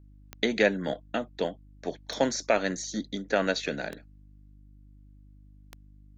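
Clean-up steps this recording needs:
click removal
hum removal 50.3 Hz, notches 6

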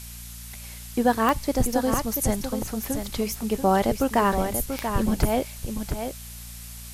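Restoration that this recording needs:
click removal
hum removal 58.4 Hz, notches 4
noise reduction from a noise print 30 dB
echo removal 686 ms −7.5 dB

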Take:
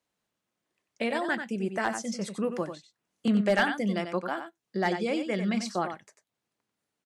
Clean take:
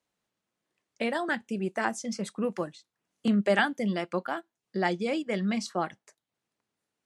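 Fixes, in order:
clipped peaks rebuilt −16 dBFS
echo removal 93 ms −8.5 dB

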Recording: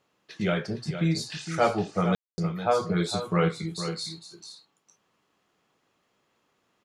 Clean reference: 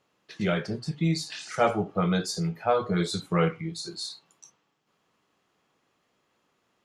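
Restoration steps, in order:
ambience match 0:02.15–0:02.38
echo removal 460 ms −10 dB

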